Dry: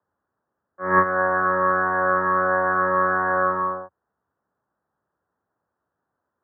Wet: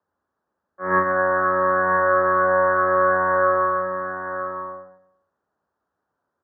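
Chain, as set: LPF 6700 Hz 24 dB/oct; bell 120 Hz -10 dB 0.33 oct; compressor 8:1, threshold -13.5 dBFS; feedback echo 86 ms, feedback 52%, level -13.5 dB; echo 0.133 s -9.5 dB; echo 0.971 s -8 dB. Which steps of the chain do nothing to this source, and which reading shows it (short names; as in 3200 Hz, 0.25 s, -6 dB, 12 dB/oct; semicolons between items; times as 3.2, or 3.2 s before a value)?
LPF 6700 Hz: input band ends at 1900 Hz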